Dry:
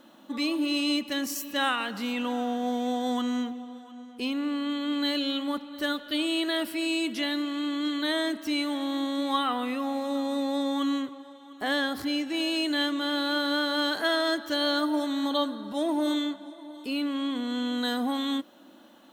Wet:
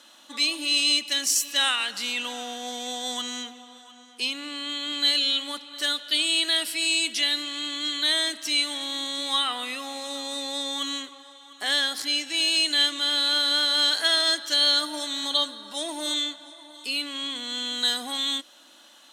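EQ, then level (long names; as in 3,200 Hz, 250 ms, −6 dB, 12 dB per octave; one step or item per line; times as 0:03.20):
meter weighting curve ITU-R 468
dynamic equaliser 1,200 Hz, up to −4 dB, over −41 dBFS, Q 1.1
high-shelf EQ 10,000 Hz +7.5 dB
0.0 dB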